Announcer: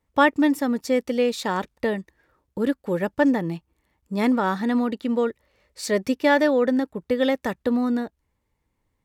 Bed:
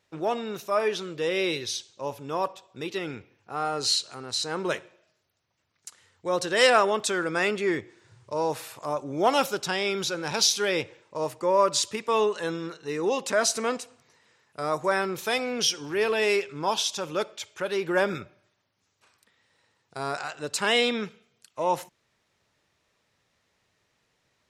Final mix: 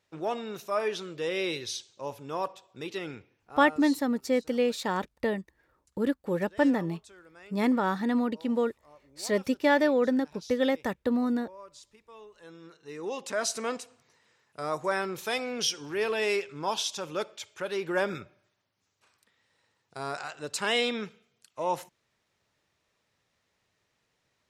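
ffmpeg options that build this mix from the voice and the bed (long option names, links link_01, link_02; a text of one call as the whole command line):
ffmpeg -i stem1.wav -i stem2.wav -filter_complex "[0:a]adelay=3400,volume=-4.5dB[link_01];[1:a]volume=18.5dB,afade=type=out:start_time=3.06:duration=0.95:silence=0.0749894,afade=type=in:start_time=12.32:duration=1.46:silence=0.0749894[link_02];[link_01][link_02]amix=inputs=2:normalize=0" out.wav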